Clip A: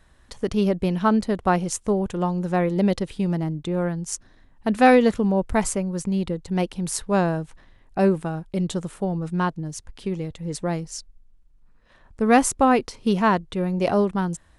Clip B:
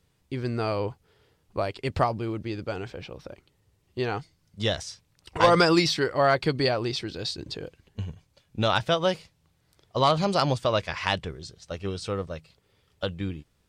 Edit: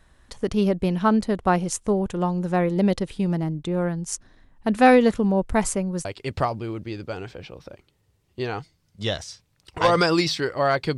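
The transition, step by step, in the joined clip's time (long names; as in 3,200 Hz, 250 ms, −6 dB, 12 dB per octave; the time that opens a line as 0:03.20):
clip A
0:06.05: continue with clip B from 0:01.64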